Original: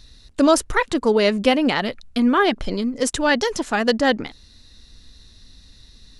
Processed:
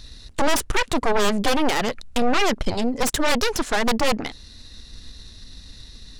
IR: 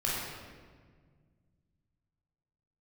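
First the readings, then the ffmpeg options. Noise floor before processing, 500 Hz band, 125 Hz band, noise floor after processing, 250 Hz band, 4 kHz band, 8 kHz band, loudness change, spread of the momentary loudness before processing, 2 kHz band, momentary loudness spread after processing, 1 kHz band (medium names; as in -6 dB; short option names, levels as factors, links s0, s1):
-51 dBFS, -4.0 dB, +1.0 dB, -45 dBFS, -5.0 dB, 0.0 dB, +1.5 dB, -3.0 dB, 8 LU, -2.0 dB, 5 LU, -1.0 dB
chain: -filter_complex "[0:a]asplit=2[s0][s1];[s1]acompressor=threshold=0.0398:ratio=6,volume=0.891[s2];[s0][s2]amix=inputs=2:normalize=0,aeval=exprs='1.33*(cos(1*acos(clip(val(0)/1.33,-1,1)))-cos(1*PI/2))+0.596*(cos(6*acos(clip(val(0)/1.33,-1,1)))-cos(6*PI/2))':c=same,asoftclip=type=tanh:threshold=0.237"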